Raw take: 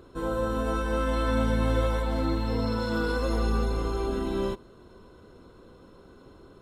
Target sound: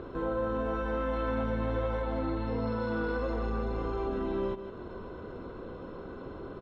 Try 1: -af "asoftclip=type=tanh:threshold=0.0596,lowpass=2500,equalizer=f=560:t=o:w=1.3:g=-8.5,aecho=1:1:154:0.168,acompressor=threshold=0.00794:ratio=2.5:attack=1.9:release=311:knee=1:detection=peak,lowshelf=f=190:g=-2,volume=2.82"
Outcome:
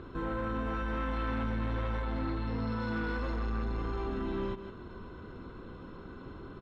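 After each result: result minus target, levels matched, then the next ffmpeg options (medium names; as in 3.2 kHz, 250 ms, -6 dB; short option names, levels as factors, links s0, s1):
500 Hz band -6.0 dB; saturation: distortion +8 dB
-af "asoftclip=type=tanh:threshold=0.0596,lowpass=2500,equalizer=f=560:t=o:w=1.3:g=2,aecho=1:1:154:0.168,acompressor=threshold=0.00794:ratio=2.5:attack=1.9:release=311:knee=1:detection=peak,lowshelf=f=190:g=-2,volume=2.82"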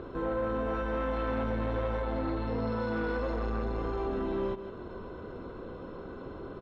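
saturation: distortion +8 dB
-af "asoftclip=type=tanh:threshold=0.126,lowpass=2500,equalizer=f=560:t=o:w=1.3:g=2,aecho=1:1:154:0.168,acompressor=threshold=0.00794:ratio=2.5:attack=1.9:release=311:knee=1:detection=peak,lowshelf=f=190:g=-2,volume=2.82"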